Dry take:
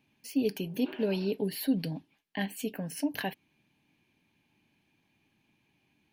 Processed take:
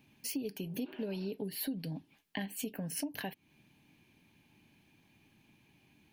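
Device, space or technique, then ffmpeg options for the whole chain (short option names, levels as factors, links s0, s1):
ASMR close-microphone chain: -af "lowshelf=f=240:g=4.5,acompressor=threshold=0.00891:ratio=5,highshelf=f=7100:g=5,volume=1.58"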